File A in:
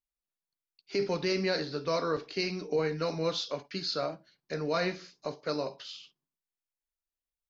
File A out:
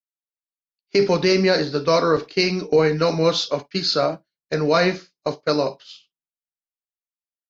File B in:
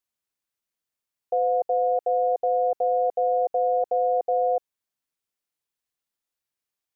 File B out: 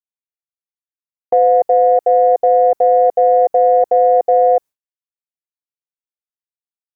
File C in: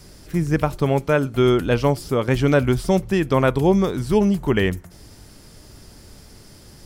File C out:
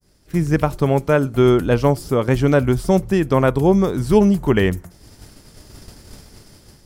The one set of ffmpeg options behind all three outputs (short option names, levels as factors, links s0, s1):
-af "agate=range=0.0224:threshold=0.0178:ratio=3:detection=peak,adynamicequalizer=threshold=0.00794:dfrequency=3000:dqfactor=0.72:tfrequency=3000:tqfactor=0.72:attack=5:release=100:ratio=0.375:range=3:mode=cutabove:tftype=bell,dynaudnorm=f=120:g=5:m=5.31,aeval=exprs='0.944*(cos(1*acos(clip(val(0)/0.944,-1,1)))-cos(1*PI/2))+0.0237*(cos(3*acos(clip(val(0)/0.944,-1,1)))-cos(3*PI/2))':c=same,volume=0.891"